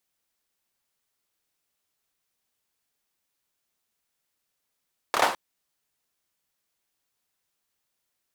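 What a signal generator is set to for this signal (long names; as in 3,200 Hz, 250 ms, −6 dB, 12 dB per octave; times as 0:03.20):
synth clap length 0.21 s, apart 27 ms, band 780 Hz, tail 0.41 s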